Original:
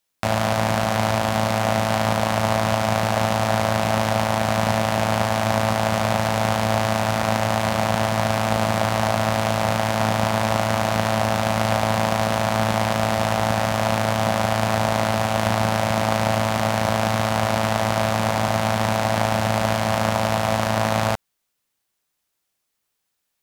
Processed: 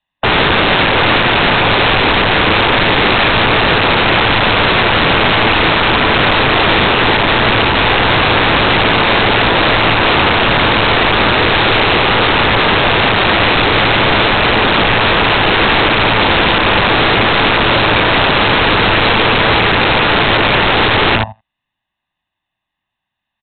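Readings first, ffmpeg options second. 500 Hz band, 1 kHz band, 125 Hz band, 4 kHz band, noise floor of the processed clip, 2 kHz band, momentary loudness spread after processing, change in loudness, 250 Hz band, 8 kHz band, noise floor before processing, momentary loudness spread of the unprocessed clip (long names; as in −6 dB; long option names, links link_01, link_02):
+7.5 dB, +9.0 dB, +5.0 dB, +17.0 dB, −79 dBFS, +16.0 dB, 0 LU, +11.0 dB, +8.0 dB, below −40 dB, −77 dBFS, 1 LU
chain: -filter_complex "[0:a]aecho=1:1:1.1:0.87,aecho=1:1:84|168|252:0.355|0.0603|0.0103,apsyclip=18dB,acrossover=split=230|950[link_01][link_02][link_03];[link_03]volume=14dB,asoftclip=hard,volume=-14dB[link_04];[link_01][link_02][link_04]amix=inputs=3:normalize=0,afftdn=noise_reduction=13:noise_floor=-21,aresample=8000,aeval=exprs='(mod(1.58*val(0)+1,2)-1)/1.58':channel_layout=same,aresample=44100,volume=-2.5dB"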